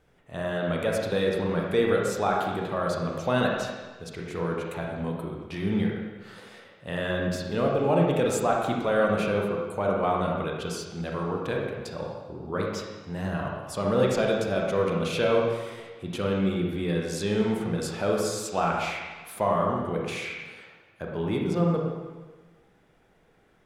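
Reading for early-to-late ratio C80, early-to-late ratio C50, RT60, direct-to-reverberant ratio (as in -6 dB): 3.0 dB, 1.0 dB, 1.3 s, -1.5 dB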